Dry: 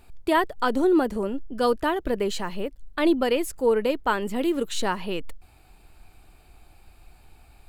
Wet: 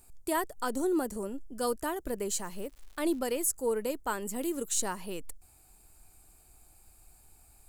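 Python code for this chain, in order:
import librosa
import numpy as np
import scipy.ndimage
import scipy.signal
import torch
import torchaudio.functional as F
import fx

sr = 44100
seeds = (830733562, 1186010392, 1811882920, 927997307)

y = fx.high_shelf_res(x, sr, hz=5100.0, db=14.0, q=1.5)
y = fx.dmg_crackle(y, sr, seeds[0], per_s=250.0, level_db=-37.0, at=(2.44, 3.49), fade=0.02)
y = y * 10.0 ** (-9.0 / 20.0)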